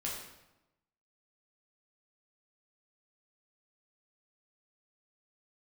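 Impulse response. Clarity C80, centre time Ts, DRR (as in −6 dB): 5.0 dB, 52 ms, −4.5 dB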